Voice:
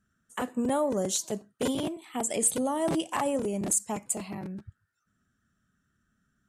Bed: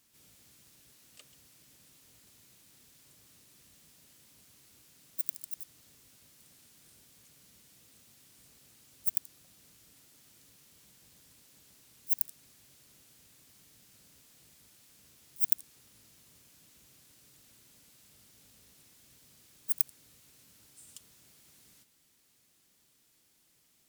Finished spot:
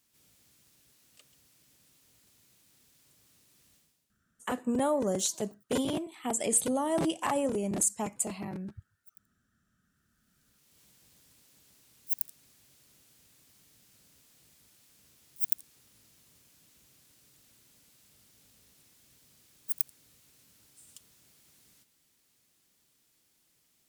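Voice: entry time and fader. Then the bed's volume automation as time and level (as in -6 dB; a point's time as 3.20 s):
4.10 s, -1.0 dB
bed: 3.75 s -4 dB
4.23 s -27 dB
9.77 s -27 dB
10.81 s -2 dB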